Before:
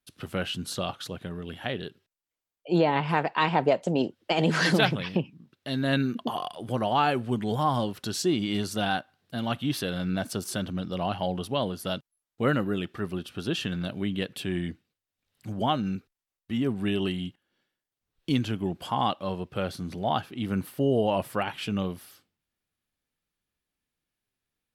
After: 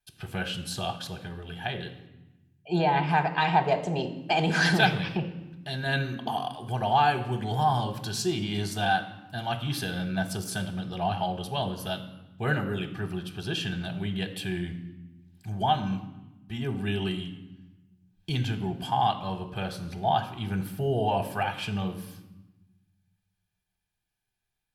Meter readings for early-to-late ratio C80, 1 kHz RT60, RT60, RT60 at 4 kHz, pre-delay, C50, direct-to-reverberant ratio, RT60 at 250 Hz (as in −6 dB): 14.0 dB, 1.0 s, 1.0 s, 0.85 s, 3 ms, 12.0 dB, 8.5 dB, 1.5 s